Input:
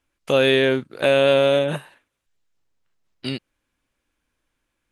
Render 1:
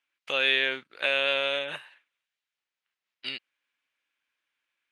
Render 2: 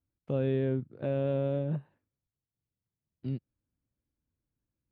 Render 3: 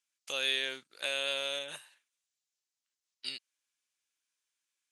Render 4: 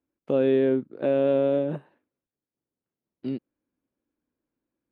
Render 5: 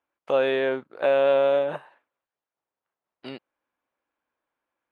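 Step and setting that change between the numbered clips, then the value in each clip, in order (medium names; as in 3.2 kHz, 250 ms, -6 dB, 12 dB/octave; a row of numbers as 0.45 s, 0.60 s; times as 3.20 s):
band-pass filter, frequency: 2.5 kHz, 110 Hz, 6.6 kHz, 280 Hz, 820 Hz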